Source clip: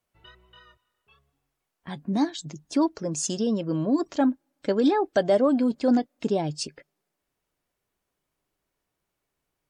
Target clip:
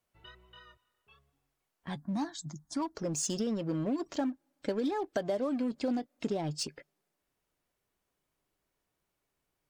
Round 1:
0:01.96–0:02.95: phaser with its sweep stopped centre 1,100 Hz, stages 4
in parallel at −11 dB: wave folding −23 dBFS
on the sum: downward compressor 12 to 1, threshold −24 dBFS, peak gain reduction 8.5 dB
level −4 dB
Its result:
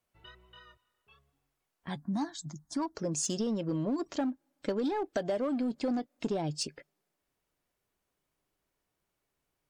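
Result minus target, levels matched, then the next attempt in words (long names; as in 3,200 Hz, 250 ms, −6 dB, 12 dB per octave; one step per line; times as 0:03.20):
wave folding: distortion −23 dB
0:01.96–0:02.95: phaser with its sweep stopped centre 1,100 Hz, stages 4
in parallel at −11 dB: wave folding −32 dBFS
on the sum: downward compressor 12 to 1, threshold −24 dBFS, peak gain reduction 9 dB
level −4 dB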